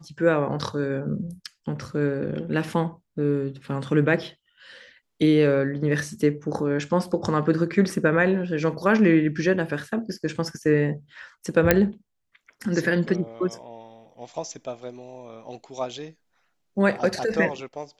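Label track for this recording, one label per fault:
11.710000	11.710000	pop -2 dBFS

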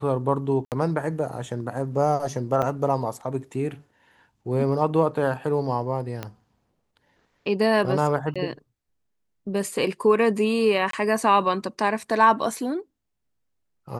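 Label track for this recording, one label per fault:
0.650000	0.720000	dropout 68 ms
2.620000	2.630000	dropout 5.4 ms
6.230000	6.230000	pop -16 dBFS
8.340000	8.360000	dropout 16 ms
10.910000	10.930000	dropout 23 ms

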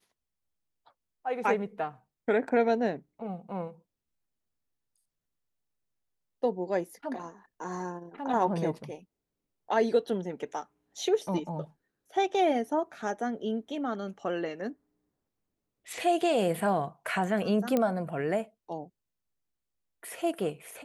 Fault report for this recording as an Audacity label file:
17.770000	17.770000	pop -14 dBFS

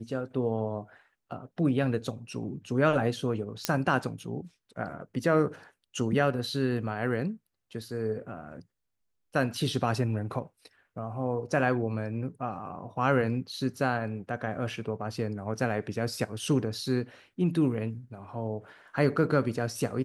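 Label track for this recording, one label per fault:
3.650000	3.650000	pop -8 dBFS

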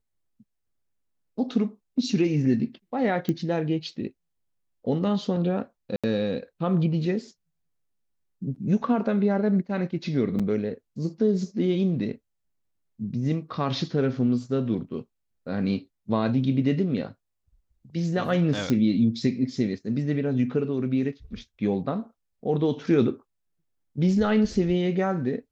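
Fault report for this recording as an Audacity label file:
3.290000	3.290000	pop -15 dBFS
5.960000	6.040000	dropout 76 ms
10.390000	10.400000	dropout 6.2 ms
18.700000	18.700000	pop -13 dBFS

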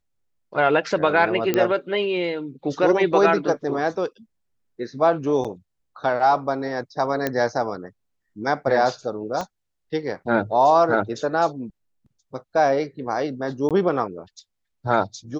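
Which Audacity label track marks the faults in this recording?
1.540000	1.540000	pop -7 dBFS
5.440000	5.450000	dropout 6.4 ms
7.270000	7.270000	pop -9 dBFS
9.410000	9.410000	pop -15 dBFS
13.690000	13.710000	dropout 17 ms

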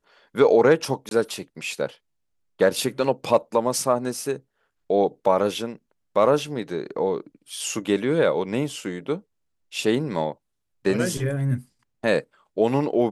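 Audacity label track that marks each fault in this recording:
1.090000	1.110000	dropout 22 ms

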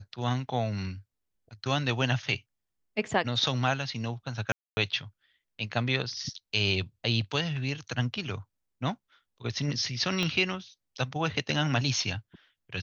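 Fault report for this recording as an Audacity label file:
4.520000	4.770000	dropout 250 ms
10.230000	10.230000	pop -16 dBFS

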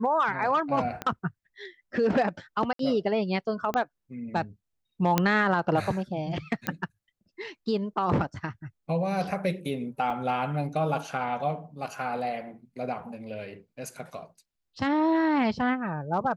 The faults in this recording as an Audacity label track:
1.020000	1.020000	pop -17 dBFS
2.730000	2.790000	dropout 63 ms
3.740000	3.740000	pop -15 dBFS
5.180000	5.180000	pop -7 dBFS
6.670000	6.670000	pop -12 dBFS
10.100000	10.100000	dropout 4.1 ms

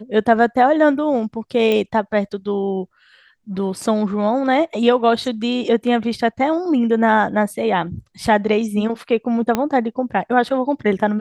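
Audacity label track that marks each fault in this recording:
1.720000	1.720000	pop -9 dBFS
9.550000	9.550000	pop -5 dBFS

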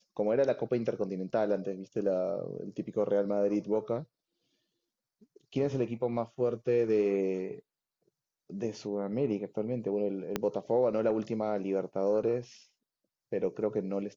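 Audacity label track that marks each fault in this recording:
10.360000	10.360000	pop -15 dBFS

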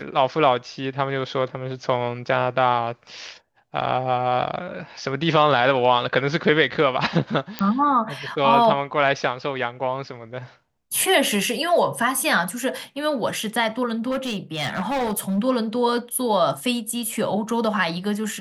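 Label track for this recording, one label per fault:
7.590000	7.590000	pop -10 dBFS
14.100000	15.390000	clipped -20.5 dBFS

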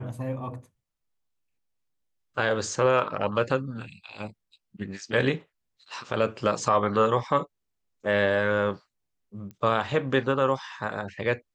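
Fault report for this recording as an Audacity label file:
9.510000	9.510000	pop -30 dBFS

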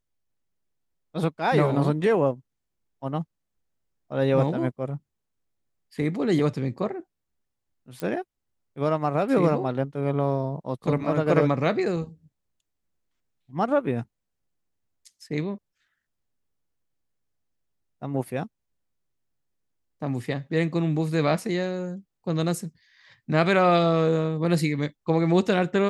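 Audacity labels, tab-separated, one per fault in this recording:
8.000000	8.000000	pop -17 dBFS

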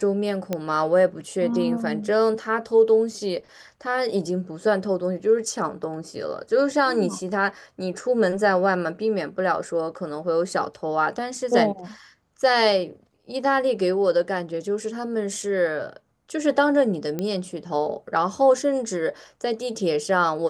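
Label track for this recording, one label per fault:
0.530000	0.530000	pop -12 dBFS
17.190000	17.190000	pop -14 dBFS

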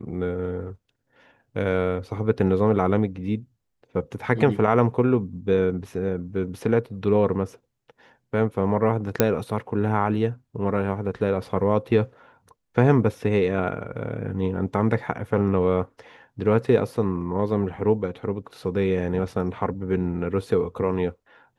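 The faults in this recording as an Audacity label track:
9.200000	9.200000	pop -3 dBFS

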